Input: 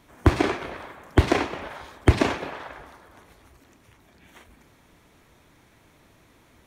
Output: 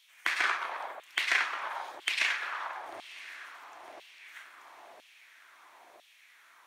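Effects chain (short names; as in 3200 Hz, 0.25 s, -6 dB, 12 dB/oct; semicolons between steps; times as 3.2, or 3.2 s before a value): diffused feedback echo 1.035 s, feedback 50%, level -16 dB; LFO high-pass saw down 1 Hz 590–3200 Hz; gain -2.5 dB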